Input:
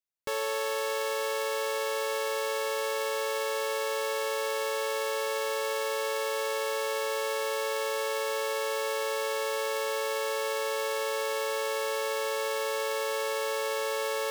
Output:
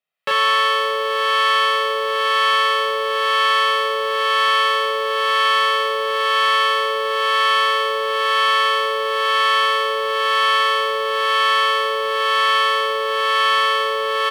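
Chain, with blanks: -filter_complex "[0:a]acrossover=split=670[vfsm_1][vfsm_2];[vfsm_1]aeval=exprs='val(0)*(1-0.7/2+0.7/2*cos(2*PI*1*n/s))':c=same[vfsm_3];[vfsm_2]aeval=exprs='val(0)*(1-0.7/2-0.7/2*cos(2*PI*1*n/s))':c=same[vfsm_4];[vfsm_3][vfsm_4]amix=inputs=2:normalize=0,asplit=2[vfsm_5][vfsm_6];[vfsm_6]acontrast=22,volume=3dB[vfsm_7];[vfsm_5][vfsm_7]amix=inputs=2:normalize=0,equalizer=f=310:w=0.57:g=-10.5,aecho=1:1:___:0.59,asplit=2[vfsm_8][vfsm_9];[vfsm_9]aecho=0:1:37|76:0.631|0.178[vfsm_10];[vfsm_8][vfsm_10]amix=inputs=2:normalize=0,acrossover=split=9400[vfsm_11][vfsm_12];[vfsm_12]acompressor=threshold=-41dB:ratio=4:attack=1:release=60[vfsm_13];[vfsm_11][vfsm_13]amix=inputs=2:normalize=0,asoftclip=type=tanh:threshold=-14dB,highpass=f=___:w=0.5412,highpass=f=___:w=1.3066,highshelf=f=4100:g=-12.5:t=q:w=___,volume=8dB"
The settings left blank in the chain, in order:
1.6, 170, 170, 1.5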